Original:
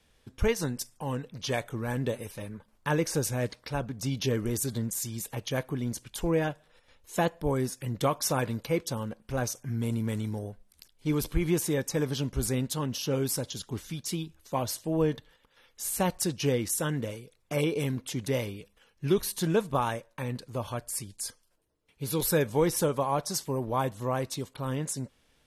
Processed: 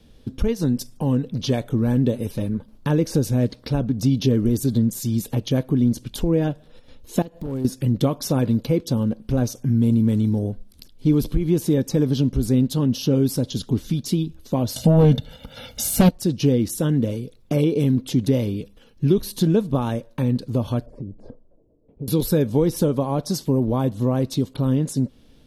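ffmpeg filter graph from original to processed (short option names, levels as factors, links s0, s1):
-filter_complex "[0:a]asettb=1/sr,asplit=3[s0][s1][s2];[s0]atrim=end=7.224[s3];[s1]atrim=start=7.22:end=7.65,asetpts=PTS-STARTPTS,afade=t=in:d=0.004:c=qsin,afade=t=out:st=0.426:d=0.004:c=qsin,highshelf=f=7100:g=5,acompressor=threshold=0.00891:ratio=5:attack=3.2:release=140:knee=1:detection=peak,aeval=exprs='0.0126*(abs(mod(val(0)/0.0126+3,4)-2)-1)':c=same[s4];[s2]atrim=start=7.646[s5];[s3][s4]acrossfade=d=0.004:c1=hsin:c2=qsin[s6];[s6][s5]acrossfade=d=0.004:c1=qsin:c2=hsin,asettb=1/sr,asplit=3[s7][s8][s9];[s7]atrim=end=14.764[s10];[s8]atrim=start=14.76:end=16.09,asetpts=PTS-STARTPTS,afade=t=in:d=0.004:c=qsin,afade=t=out:st=1.326:d=0.004:c=qsin,highpass=44,aecho=1:1:1.4:0.99,atrim=end_sample=58653,aeval=exprs='0.251*sin(PI/2*2.51*val(0)/0.251)':c=same[s11];[s9]atrim=start=16.086[s12];[s10][s11]acrossfade=d=0.004:c1=hsin:c2=qsin[s13];[s13][s12]acrossfade=d=0.004:c1=qsin:c2=hsin,asettb=1/sr,asplit=3[s14][s15][s16];[s14]atrim=end=20.864[s17];[s15]atrim=start=20.86:end=22.08,asetpts=PTS-STARTPTS,afade=t=in:d=0.004:c=qsin,afade=t=out:st=1.216:d=0.004:c=qsin,lowpass=f=610:t=q:w=2.1,acompressor=threshold=0.00562:ratio=5:attack=3.2:release=140:knee=1:detection=peak[s18];[s16]atrim=start=22.076[s19];[s17][s18]acrossfade=d=0.004:c1=hsin:c2=qsin[s20];[s20][s19]acrossfade=d=0.004:c1=qsin:c2=hsin,lowshelf=f=73:g=12,acompressor=threshold=0.0178:ratio=2,equalizer=f=125:t=o:w=1:g=4,equalizer=f=250:t=o:w=1:g=11,equalizer=f=500:t=o:w=1:g=3,equalizer=f=1000:t=o:w=1:g=-3,equalizer=f=2000:t=o:w=1:g=-6,equalizer=f=4000:t=o:w=1:g=4,equalizer=f=8000:t=o:w=1:g=-6,volume=2.37"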